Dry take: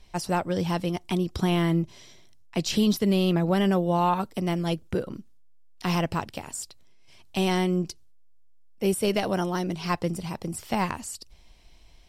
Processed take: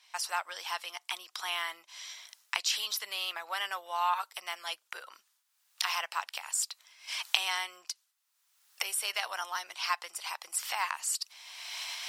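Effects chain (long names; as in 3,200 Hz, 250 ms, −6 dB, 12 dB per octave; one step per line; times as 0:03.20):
camcorder AGC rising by 30 dB per second
high-pass filter 1,000 Hz 24 dB per octave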